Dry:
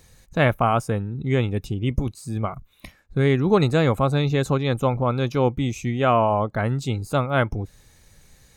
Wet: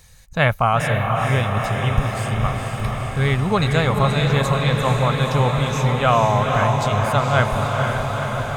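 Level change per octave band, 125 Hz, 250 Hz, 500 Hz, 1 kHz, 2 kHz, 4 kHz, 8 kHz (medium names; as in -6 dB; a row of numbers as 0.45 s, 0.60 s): +4.5 dB, -0.5 dB, +1.5 dB, +5.5 dB, +7.0 dB, +7.0 dB, +7.5 dB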